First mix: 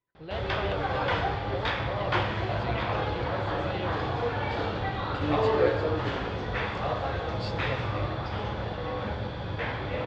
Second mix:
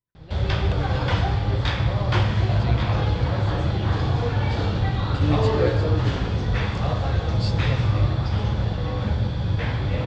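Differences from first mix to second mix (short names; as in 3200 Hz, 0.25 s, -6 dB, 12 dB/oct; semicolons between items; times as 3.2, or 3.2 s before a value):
speech -10.0 dB; master: add tone controls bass +13 dB, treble +12 dB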